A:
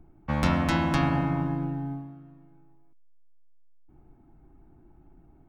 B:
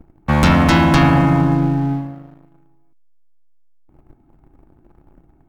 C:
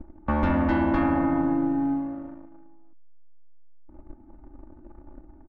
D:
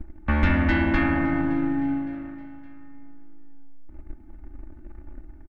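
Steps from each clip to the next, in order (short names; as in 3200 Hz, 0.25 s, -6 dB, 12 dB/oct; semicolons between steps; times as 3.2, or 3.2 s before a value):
sample leveller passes 2; gain +6.5 dB
LPF 1500 Hz 12 dB/oct; comb 3.4 ms, depth 91%; compressor 2:1, threshold -30 dBFS, peak gain reduction 12.5 dB
ten-band EQ 125 Hz -4 dB, 250 Hz -5 dB, 500 Hz -9 dB, 1000 Hz -11 dB, 2000 Hz +6 dB; feedback echo 0.565 s, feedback 46%, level -20 dB; gain +7.5 dB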